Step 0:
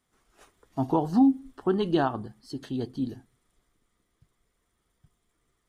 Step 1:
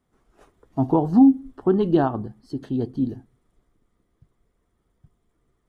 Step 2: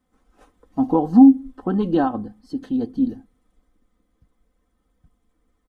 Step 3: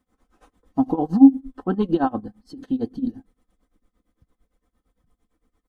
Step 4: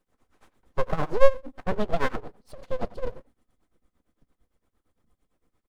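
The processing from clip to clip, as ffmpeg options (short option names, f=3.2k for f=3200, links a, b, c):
-af "tiltshelf=f=1.3k:g=7"
-af "aecho=1:1:3.9:0.76,volume=-1dB"
-af "tremolo=f=8.8:d=0.9,volume=2dB"
-filter_complex "[0:a]asplit=2[a][b];[b]adelay=90,highpass=300,lowpass=3.4k,asoftclip=type=hard:threshold=-11.5dB,volume=-18dB[c];[a][c]amix=inputs=2:normalize=0,aeval=exprs='abs(val(0))':c=same,volume=-1.5dB"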